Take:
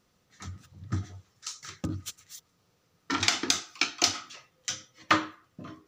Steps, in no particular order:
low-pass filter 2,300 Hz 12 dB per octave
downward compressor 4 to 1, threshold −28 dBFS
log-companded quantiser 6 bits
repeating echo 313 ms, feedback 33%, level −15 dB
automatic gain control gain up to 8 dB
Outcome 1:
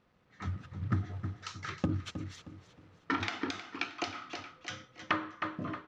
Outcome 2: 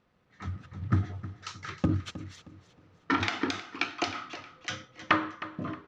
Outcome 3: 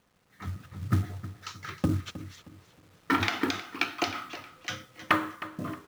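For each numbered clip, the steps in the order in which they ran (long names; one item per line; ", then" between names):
log-companded quantiser, then automatic gain control, then repeating echo, then downward compressor, then low-pass filter
downward compressor, then repeating echo, then automatic gain control, then log-companded quantiser, then low-pass filter
downward compressor, then low-pass filter, then log-companded quantiser, then repeating echo, then automatic gain control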